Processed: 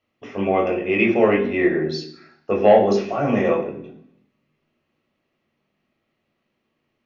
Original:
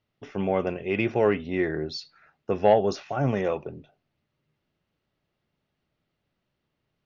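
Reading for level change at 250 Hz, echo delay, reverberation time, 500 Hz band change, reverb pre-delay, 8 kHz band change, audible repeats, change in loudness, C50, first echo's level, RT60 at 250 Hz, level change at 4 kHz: +7.5 dB, no echo audible, 0.65 s, +6.5 dB, 17 ms, can't be measured, no echo audible, +6.5 dB, 9.0 dB, no echo audible, 0.90 s, +4.0 dB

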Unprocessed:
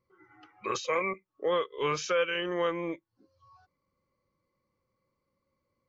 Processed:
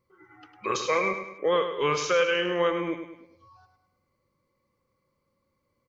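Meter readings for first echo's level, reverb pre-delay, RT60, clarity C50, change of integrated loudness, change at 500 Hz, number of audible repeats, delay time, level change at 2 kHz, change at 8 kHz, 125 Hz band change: −8.5 dB, no reverb audible, no reverb audible, no reverb audible, +4.5 dB, +5.0 dB, 4, 103 ms, +5.0 dB, can't be measured, +4.0 dB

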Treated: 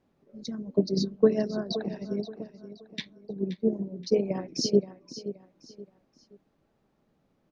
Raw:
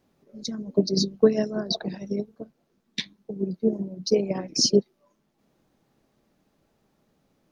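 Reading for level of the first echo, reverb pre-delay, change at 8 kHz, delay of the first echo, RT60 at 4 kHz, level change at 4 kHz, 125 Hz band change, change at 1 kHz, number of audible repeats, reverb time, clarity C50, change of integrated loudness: −13.5 dB, no reverb audible, −10.0 dB, 525 ms, no reverb audible, −8.5 dB, −2.5 dB, −2.5 dB, 3, no reverb audible, no reverb audible, −3.5 dB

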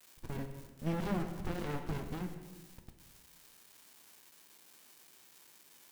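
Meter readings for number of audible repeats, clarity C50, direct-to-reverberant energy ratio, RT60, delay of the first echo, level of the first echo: no echo audible, 8.0 dB, 5.5 dB, 1.3 s, no echo audible, no echo audible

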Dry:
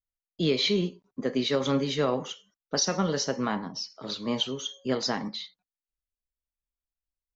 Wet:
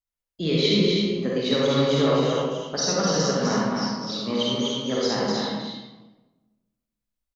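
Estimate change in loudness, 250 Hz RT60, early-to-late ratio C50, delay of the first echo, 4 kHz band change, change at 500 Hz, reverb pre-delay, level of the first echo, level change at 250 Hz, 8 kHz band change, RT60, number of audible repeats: +5.5 dB, 1.4 s, −4.0 dB, 254 ms, +4.5 dB, +6.5 dB, 40 ms, −4.0 dB, +6.0 dB, can't be measured, 1.2 s, 1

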